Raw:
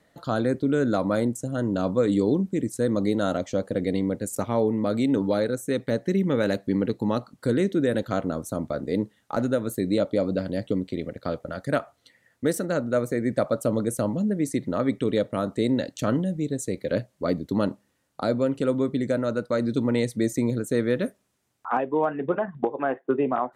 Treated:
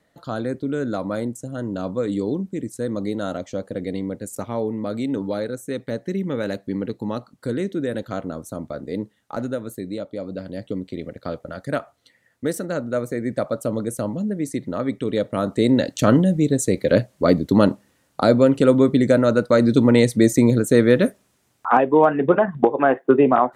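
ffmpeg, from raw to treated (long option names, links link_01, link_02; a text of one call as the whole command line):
ffmpeg -i in.wav -af "volume=15dB,afade=type=out:start_time=9.46:duration=0.62:silence=0.501187,afade=type=in:start_time=10.08:duration=1.02:silence=0.398107,afade=type=in:start_time=15.06:duration=1.07:silence=0.354813" out.wav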